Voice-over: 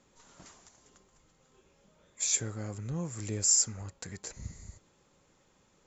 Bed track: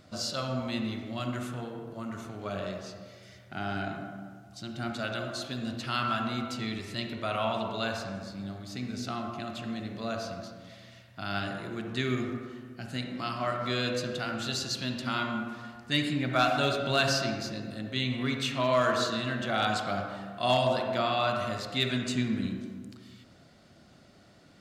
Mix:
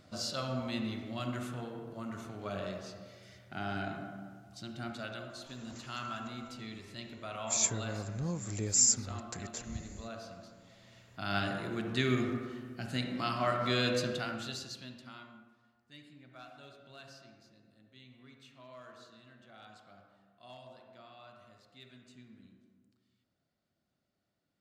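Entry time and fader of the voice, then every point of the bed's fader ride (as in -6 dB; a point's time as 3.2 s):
5.30 s, -0.5 dB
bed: 4.55 s -3.5 dB
5.35 s -10.5 dB
10.7 s -10.5 dB
11.35 s 0 dB
14.05 s 0 dB
15.57 s -26.5 dB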